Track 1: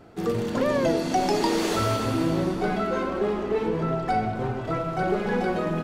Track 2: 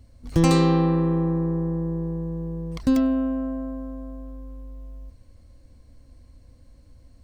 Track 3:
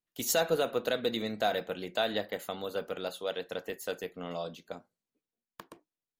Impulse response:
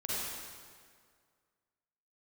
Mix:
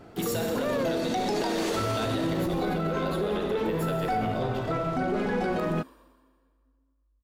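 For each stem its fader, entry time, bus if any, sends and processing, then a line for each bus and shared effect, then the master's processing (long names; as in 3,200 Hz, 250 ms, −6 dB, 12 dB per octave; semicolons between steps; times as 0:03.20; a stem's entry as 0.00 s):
+1.0 dB, 0.00 s, no send, soft clipping −15.5 dBFS, distortion −22 dB
−7.5 dB, 2.10 s, send −8 dB, gate on every frequency bin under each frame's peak −20 dB strong; pitch vibrato 0.9 Hz 49 cents; expander for the loud parts 2.5 to 1, over −35 dBFS
+0.5 dB, 0.00 s, send −6 dB, notch filter 6,300 Hz, Q 5.6; brickwall limiter −22 dBFS, peak gain reduction 6 dB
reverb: on, RT60 2.0 s, pre-delay 39 ms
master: brickwall limiter −20 dBFS, peak gain reduction 9.5 dB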